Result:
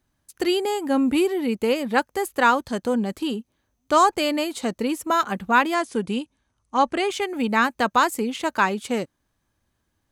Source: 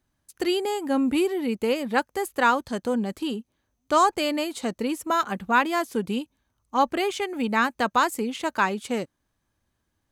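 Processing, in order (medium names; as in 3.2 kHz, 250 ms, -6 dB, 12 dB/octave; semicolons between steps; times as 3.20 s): 5.74–7.10 s: Chebyshev low-pass 11 kHz, order 10; trim +2.5 dB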